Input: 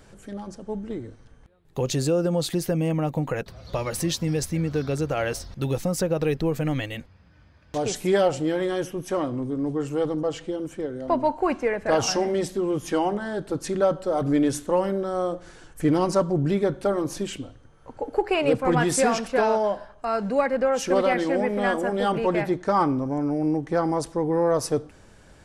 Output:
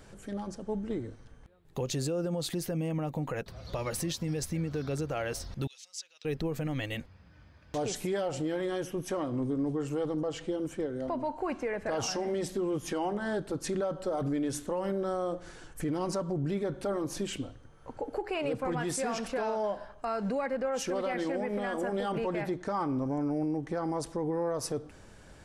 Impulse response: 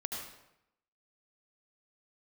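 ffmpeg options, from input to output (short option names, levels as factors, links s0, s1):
-filter_complex "[0:a]alimiter=limit=0.075:level=0:latency=1:release=158,asettb=1/sr,asplit=3[s0][s1][s2];[s0]atrim=end=5.674[s3];[s1]atrim=start=5.67:end=6.25,asetpts=PTS-STARTPTS,afade=t=in:d=0.004:c=qsin,afade=t=out:st=0.576:d=0.004:c=qsin,asuperpass=centerf=4700:order=4:qfactor=1.1[s4];[s2]atrim=start=6.246[s5];[s3][s4]acrossfade=d=0.004:c1=hsin:c2=qsin[s6];[s6][s5]acrossfade=d=0.004:c1=qsin:c2=hsin,volume=0.841"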